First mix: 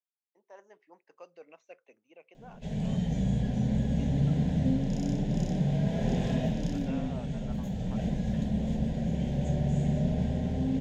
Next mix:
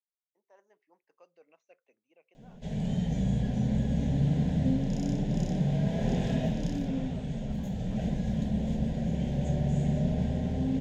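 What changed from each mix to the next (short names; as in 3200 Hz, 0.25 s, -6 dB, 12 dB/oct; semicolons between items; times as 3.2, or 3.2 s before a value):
speech -9.5 dB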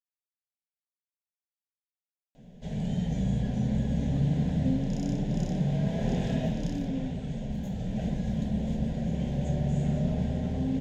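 speech: entry +2.95 s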